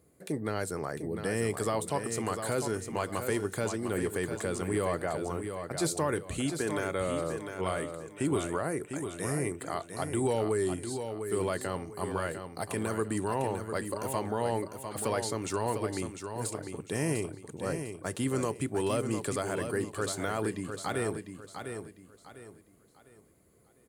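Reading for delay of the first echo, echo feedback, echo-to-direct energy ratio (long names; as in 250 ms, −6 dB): 701 ms, 32%, −7.0 dB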